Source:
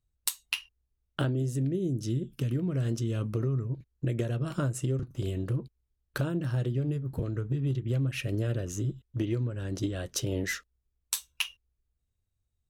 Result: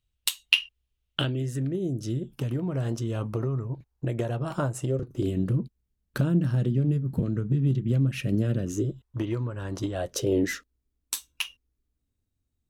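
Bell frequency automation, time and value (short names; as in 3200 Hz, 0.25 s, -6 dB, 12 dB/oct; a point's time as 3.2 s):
bell +13 dB 0.9 oct
1.29 s 3000 Hz
1.83 s 830 Hz
4.79 s 830 Hz
5.4 s 200 Hz
8.64 s 200 Hz
9.05 s 1000 Hz
9.84 s 1000 Hz
10.49 s 270 Hz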